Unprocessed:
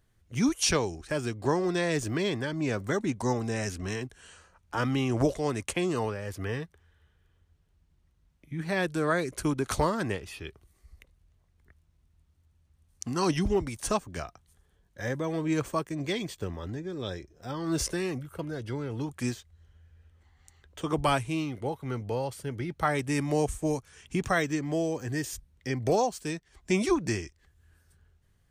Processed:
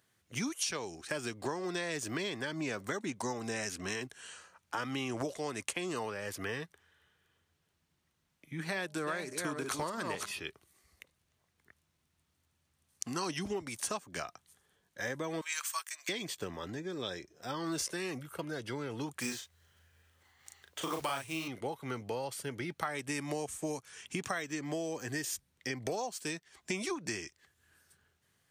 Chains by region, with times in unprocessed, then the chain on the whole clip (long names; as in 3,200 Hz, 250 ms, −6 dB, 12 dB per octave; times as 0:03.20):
0:08.63–0:10.40: delay that plays each chunk backwards 336 ms, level −6.5 dB + hum removal 203.2 Hz, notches 5
0:15.41–0:16.09: high-pass filter 1,100 Hz 24 dB per octave + noise gate −55 dBFS, range −6 dB + high-shelf EQ 3,700 Hz +10.5 dB
0:19.21–0:21.48: one scale factor per block 5 bits + parametric band 210 Hz −3.5 dB 1.6 octaves + double-tracking delay 37 ms −4 dB
whole clip: high-pass filter 150 Hz 12 dB per octave; tilt shelving filter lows −4 dB, about 800 Hz; downward compressor 6 to 1, threshold −33 dBFS